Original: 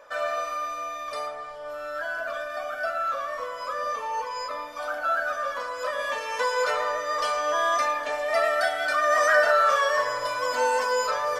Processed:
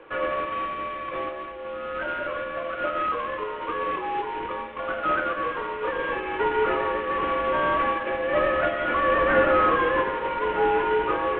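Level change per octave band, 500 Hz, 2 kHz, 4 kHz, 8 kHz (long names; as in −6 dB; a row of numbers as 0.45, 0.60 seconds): +2.0 dB, −1.0 dB, −4.0 dB, below −40 dB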